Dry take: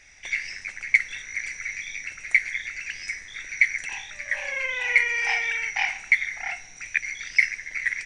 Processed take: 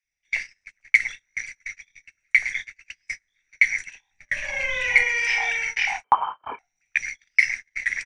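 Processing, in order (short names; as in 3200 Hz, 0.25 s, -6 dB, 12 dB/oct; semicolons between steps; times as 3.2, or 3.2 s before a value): 4.07–5 low shelf 340 Hz +10 dB; three bands offset in time highs, lows, mids 30/110 ms, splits 390/1400 Hz; 6.04–6.59 inverted band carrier 3100 Hz; gate -31 dBFS, range -36 dB; gain +3 dB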